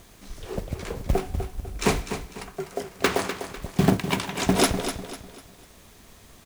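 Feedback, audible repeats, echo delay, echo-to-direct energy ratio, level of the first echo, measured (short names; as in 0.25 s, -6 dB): 36%, 3, 0.249 s, -9.0 dB, -9.5 dB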